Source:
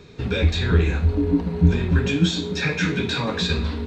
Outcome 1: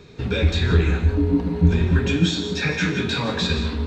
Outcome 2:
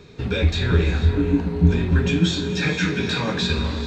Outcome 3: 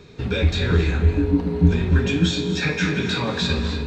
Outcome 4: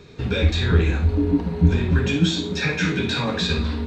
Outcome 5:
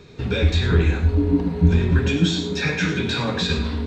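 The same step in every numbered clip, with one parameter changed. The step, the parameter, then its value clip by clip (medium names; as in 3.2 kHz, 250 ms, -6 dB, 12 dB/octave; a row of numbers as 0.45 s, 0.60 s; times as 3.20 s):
gated-style reverb, gate: 200 ms, 520 ms, 320 ms, 80 ms, 130 ms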